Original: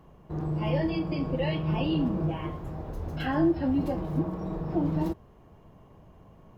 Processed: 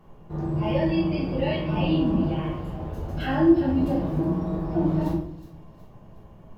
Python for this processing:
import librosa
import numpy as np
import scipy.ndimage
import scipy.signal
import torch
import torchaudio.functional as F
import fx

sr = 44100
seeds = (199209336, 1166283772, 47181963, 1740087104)

p1 = x + fx.echo_wet_highpass(x, sr, ms=367, feedback_pct=46, hz=3800.0, wet_db=-11.0, dry=0)
p2 = fx.room_shoebox(p1, sr, seeds[0], volume_m3=120.0, walls='mixed', distance_m=1.3)
y = p2 * 10.0 ** (-2.0 / 20.0)